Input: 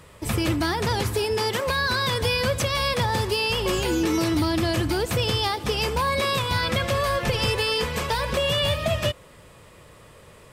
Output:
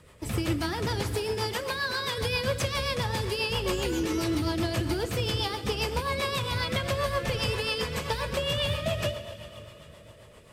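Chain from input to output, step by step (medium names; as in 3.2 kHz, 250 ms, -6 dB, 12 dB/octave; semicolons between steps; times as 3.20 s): 1.53–2.18 s: high-pass 350 Hz 6 dB/octave; plate-style reverb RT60 3.8 s, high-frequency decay 0.9×, DRR 8.5 dB; rotary cabinet horn 7.5 Hz; trim -3.5 dB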